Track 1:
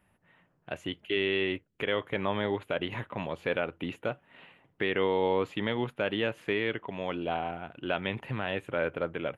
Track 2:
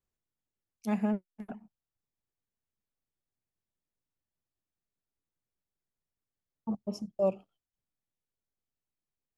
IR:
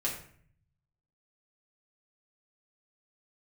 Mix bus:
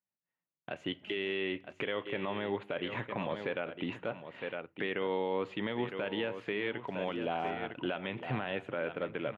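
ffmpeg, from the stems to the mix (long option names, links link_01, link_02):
-filter_complex "[0:a]agate=range=-34dB:threshold=-57dB:ratio=16:detection=peak,volume=2dB,asplit=3[link_01][link_02][link_03];[link_02]volume=-21dB[link_04];[link_03]volume=-11.5dB[link_05];[1:a]acrusher=bits=3:dc=4:mix=0:aa=0.000001,adelay=200,volume=-18dB[link_06];[2:a]atrim=start_sample=2205[link_07];[link_04][link_07]afir=irnorm=-1:irlink=0[link_08];[link_05]aecho=0:1:958:1[link_09];[link_01][link_06][link_08][link_09]amix=inputs=4:normalize=0,highpass=130,lowpass=4700,alimiter=limit=-23.5dB:level=0:latency=1:release=306"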